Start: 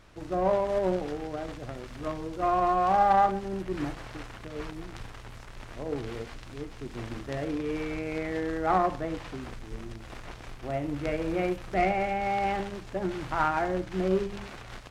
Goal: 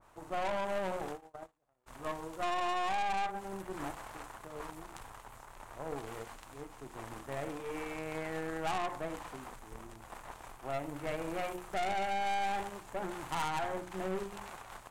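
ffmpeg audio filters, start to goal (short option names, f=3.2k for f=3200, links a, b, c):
-filter_complex "[0:a]bandreject=f=60:t=h:w=6,bandreject=f=120:t=h:w=6,bandreject=f=180:t=h:w=6,bandreject=f=240:t=h:w=6,bandreject=f=300:t=h:w=6,bandreject=f=360:t=h:w=6,asplit=3[a][b][c];[a]afade=t=out:st=1.12:d=0.02[d];[b]agate=range=-34dB:threshold=-32dB:ratio=16:detection=peak,afade=t=in:st=1.12:d=0.02,afade=t=out:st=1.86:d=0.02[e];[c]afade=t=in:st=1.86:d=0.02[f];[d][e][f]amix=inputs=3:normalize=0,equalizer=f=920:t=o:w=1.3:g=13.5,acompressor=threshold=-16dB:ratio=16,aeval=exprs='(tanh(14.1*val(0)+0.65)-tanh(0.65))/14.1':c=same,aexciter=amount=4.8:drive=3.9:freq=7k,adynamicequalizer=threshold=0.00891:dfrequency=1700:dqfactor=0.7:tfrequency=1700:tqfactor=0.7:attack=5:release=100:ratio=0.375:range=2:mode=boostabove:tftype=highshelf,volume=-8dB"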